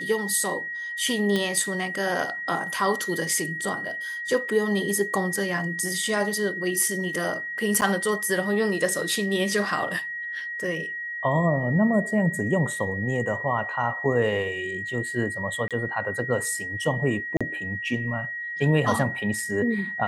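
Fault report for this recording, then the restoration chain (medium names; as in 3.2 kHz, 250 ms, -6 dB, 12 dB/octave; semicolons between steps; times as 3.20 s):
whine 1.9 kHz -30 dBFS
1.36 s: pop -12 dBFS
7.81–7.82 s: dropout 8.9 ms
15.68–15.71 s: dropout 27 ms
17.37–17.41 s: dropout 36 ms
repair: de-click; band-stop 1.9 kHz, Q 30; interpolate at 7.81 s, 8.9 ms; interpolate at 15.68 s, 27 ms; interpolate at 17.37 s, 36 ms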